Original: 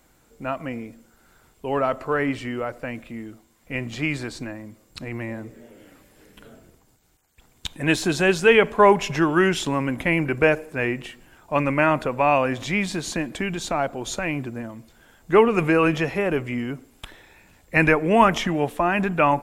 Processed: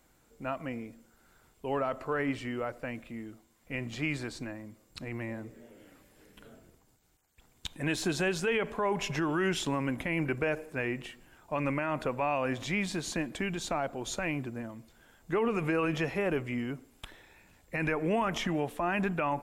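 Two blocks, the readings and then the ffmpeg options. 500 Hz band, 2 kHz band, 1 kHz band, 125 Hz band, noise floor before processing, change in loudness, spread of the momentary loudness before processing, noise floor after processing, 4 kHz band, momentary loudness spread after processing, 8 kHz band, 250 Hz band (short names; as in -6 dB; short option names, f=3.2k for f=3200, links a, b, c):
-11.5 dB, -10.5 dB, -12.0 dB, -8.0 dB, -60 dBFS, -11.0 dB, 19 LU, -66 dBFS, -8.0 dB, 14 LU, -7.0 dB, -9.0 dB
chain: -af "alimiter=limit=-14dB:level=0:latency=1:release=74,volume=-6.5dB"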